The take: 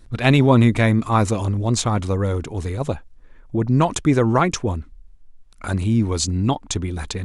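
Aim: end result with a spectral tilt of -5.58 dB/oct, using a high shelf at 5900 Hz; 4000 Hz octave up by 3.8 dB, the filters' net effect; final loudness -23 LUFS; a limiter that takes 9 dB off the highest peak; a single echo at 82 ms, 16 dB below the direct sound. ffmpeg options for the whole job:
-af "equalizer=f=4k:t=o:g=5.5,highshelf=f=5.9k:g=-3,alimiter=limit=-9.5dB:level=0:latency=1,aecho=1:1:82:0.158,volume=-2dB"

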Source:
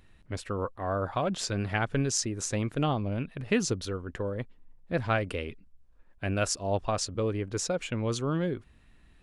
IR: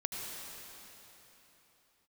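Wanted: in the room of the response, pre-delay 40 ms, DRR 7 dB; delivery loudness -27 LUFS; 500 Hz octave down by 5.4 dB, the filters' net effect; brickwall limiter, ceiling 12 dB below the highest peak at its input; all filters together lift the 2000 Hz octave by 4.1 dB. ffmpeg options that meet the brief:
-filter_complex "[0:a]equalizer=f=500:t=o:g=-7,equalizer=f=2k:t=o:g=6,alimiter=limit=-22dB:level=0:latency=1,asplit=2[a][b];[1:a]atrim=start_sample=2205,adelay=40[c];[b][c]afir=irnorm=-1:irlink=0,volume=-10dB[d];[a][d]amix=inputs=2:normalize=0,volume=6dB"

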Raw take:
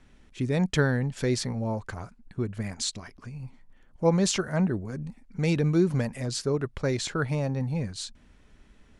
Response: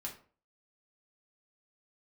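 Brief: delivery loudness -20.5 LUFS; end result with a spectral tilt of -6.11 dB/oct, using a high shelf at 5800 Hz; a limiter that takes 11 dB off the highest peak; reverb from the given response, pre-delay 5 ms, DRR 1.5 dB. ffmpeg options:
-filter_complex "[0:a]highshelf=f=5.8k:g=-7,alimiter=limit=-21.5dB:level=0:latency=1,asplit=2[a][b];[1:a]atrim=start_sample=2205,adelay=5[c];[b][c]afir=irnorm=-1:irlink=0,volume=-0.5dB[d];[a][d]amix=inputs=2:normalize=0,volume=9.5dB"

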